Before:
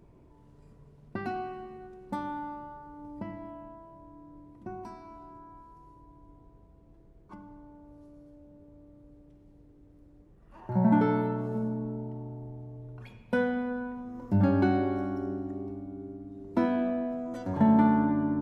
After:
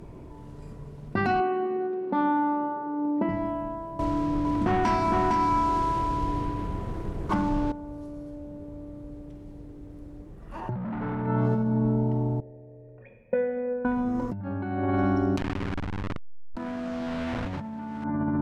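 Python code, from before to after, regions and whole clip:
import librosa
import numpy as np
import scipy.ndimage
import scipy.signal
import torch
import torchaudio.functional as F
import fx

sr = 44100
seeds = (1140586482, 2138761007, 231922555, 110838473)

y = fx.chain(x, sr, fx.highpass_res(hz=310.0, q=2.0),
    fx.air_absorb(metres=310.0), at=(1.4, 3.29))
y = fx.chain(y, sr, fx.leveller(passes=3),
    fx.echo_single(ms=459, db=-4.5), at=(3.99, 7.72))
y = fx.chain(y, sr, fx.low_shelf(hz=440.0, db=6.0),
    fx.clip_hard(threshold_db=-22.0), at=(10.69, 11.27))
y = fx.chain(y, sr, fx.formant_cascade(vowel='e'),
    fx.air_absorb(metres=120.0), at=(12.4, 13.85))
y = fx.chain(y, sr, fx.delta_hold(step_db=-33.0),
    fx.high_shelf(hz=3600.0, db=9.0),
    fx.env_flatten(amount_pct=70), at=(15.37, 18.04))
y = fx.env_lowpass_down(y, sr, base_hz=1900.0, full_db=-23.0)
y = fx.dynamic_eq(y, sr, hz=400.0, q=0.81, threshold_db=-39.0, ratio=4.0, max_db=-7)
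y = fx.over_compress(y, sr, threshold_db=-36.0, ratio=-1.0)
y = F.gain(torch.from_numpy(y), 9.0).numpy()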